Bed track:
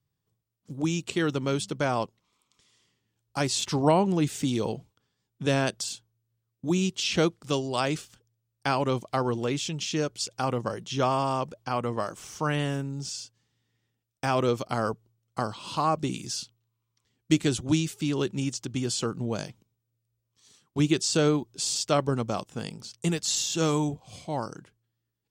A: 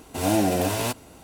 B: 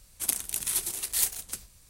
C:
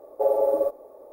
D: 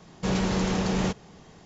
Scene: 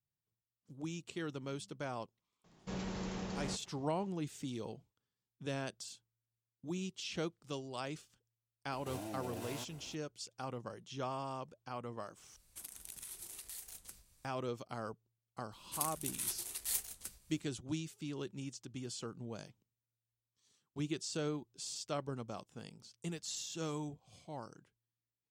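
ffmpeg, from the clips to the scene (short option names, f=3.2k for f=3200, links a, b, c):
-filter_complex "[2:a]asplit=2[a][b];[0:a]volume=-15dB[c];[1:a]acompressor=threshold=-32dB:ratio=5:attack=3.4:release=217:knee=1:detection=peak[d];[a]acompressor=threshold=-32dB:ratio=6:attack=3.2:release=140:knee=1:detection=peak[e];[b]asplit=2[f][g];[g]adelay=14,volume=-11.5dB[h];[f][h]amix=inputs=2:normalize=0[i];[c]asplit=2[j][k];[j]atrim=end=12.364[l];[e]atrim=end=1.89,asetpts=PTS-STARTPTS,volume=-12dB[m];[k]atrim=start=14.246[n];[4:a]atrim=end=1.65,asetpts=PTS-STARTPTS,volume=-15.5dB,afade=t=in:d=0.004:c=hsin,afade=t=out:st=1.646:d=0.004:c=hsin,adelay=2440[o];[d]atrim=end=1.23,asetpts=PTS-STARTPTS,volume=-10dB,afade=t=in:d=0.004:c=hsin,afade=t=out:st=1.226:d=0.004:c=hsin,adelay=8720[p];[i]atrim=end=1.89,asetpts=PTS-STARTPTS,volume=-10.5dB,afade=t=in:d=0.004:c=hsin,afade=t=out:st=1.886:d=0.004:c=hsin,adelay=15520[q];[l][m]acrossfade=d=0.004:c1=hsin:c2=hsin[r];[r][n]acrossfade=d=0.004:c1=hsin:c2=hsin[s];[s][o][p][q]amix=inputs=4:normalize=0"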